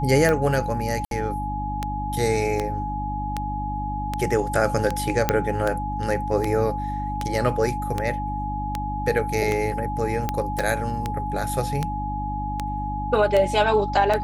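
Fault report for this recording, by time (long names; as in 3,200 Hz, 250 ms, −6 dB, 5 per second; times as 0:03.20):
mains hum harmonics 6 −30 dBFS
scratch tick 78 rpm −10 dBFS
whistle 840 Hz −28 dBFS
0:01.05–0:01.11: drop-out 62 ms
0:05.29: click −4 dBFS
0:10.59: click −11 dBFS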